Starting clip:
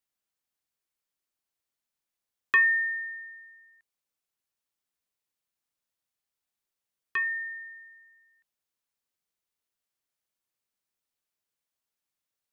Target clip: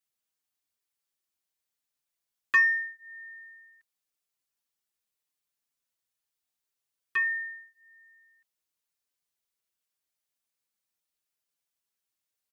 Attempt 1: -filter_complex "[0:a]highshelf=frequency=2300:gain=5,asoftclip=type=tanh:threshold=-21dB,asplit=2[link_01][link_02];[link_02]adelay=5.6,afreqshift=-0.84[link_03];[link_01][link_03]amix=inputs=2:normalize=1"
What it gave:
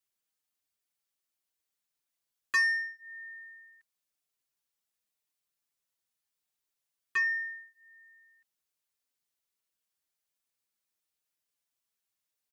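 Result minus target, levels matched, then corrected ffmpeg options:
soft clipping: distortion +18 dB
-filter_complex "[0:a]highshelf=frequency=2300:gain=5,asoftclip=type=tanh:threshold=-9dB,asplit=2[link_01][link_02];[link_02]adelay=5.6,afreqshift=-0.84[link_03];[link_01][link_03]amix=inputs=2:normalize=1"

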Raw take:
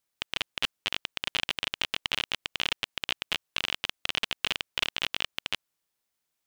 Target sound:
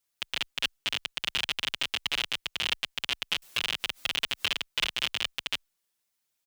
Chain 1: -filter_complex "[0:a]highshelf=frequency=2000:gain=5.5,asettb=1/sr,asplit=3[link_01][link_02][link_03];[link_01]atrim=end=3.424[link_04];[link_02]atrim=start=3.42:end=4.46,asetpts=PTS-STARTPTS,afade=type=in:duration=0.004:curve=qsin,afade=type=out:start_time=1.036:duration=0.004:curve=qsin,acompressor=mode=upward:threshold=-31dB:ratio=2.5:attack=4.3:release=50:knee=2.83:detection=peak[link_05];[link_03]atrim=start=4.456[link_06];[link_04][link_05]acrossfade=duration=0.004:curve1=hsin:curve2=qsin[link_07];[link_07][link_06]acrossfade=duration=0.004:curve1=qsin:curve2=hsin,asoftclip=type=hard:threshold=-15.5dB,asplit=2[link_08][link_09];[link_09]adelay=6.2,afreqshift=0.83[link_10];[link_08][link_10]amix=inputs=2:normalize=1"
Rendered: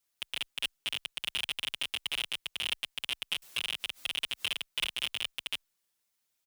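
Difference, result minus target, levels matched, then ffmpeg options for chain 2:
hard clipping: distortion +20 dB
-filter_complex "[0:a]highshelf=frequency=2000:gain=5.5,asettb=1/sr,asplit=3[link_01][link_02][link_03];[link_01]atrim=end=3.424[link_04];[link_02]atrim=start=3.42:end=4.46,asetpts=PTS-STARTPTS,afade=type=in:duration=0.004:curve=qsin,afade=type=out:start_time=1.036:duration=0.004:curve=qsin,acompressor=mode=upward:threshold=-31dB:ratio=2.5:attack=4.3:release=50:knee=2.83:detection=peak[link_05];[link_03]atrim=start=4.456[link_06];[link_04][link_05]acrossfade=duration=0.004:curve1=hsin:curve2=qsin[link_07];[link_07][link_06]acrossfade=duration=0.004:curve1=qsin:curve2=hsin,asoftclip=type=hard:threshold=-6.5dB,asplit=2[link_08][link_09];[link_09]adelay=6.2,afreqshift=0.83[link_10];[link_08][link_10]amix=inputs=2:normalize=1"

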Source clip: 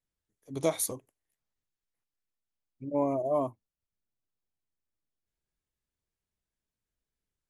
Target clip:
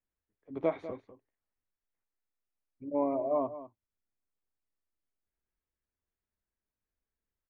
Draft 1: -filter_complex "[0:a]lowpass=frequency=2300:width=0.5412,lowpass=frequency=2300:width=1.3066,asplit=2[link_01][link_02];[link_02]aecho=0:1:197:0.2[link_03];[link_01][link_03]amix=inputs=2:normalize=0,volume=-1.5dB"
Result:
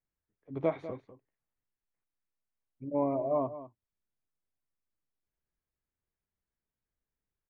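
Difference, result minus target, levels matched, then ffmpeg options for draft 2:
125 Hz band +8.5 dB
-filter_complex "[0:a]lowpass=frequency=2300:width=0.5412,lowpass=frequency=2300:width=1.3066,equalizer=frequency=140:width_type=o:width=0.31:gain=-13.5,asplit=2[link_01][link_02];[link_02]aecho=0:1:197:0.2[link_03];[link_01][link_03]amix=inputs=2:normalize=0,volume=-1.5dB"

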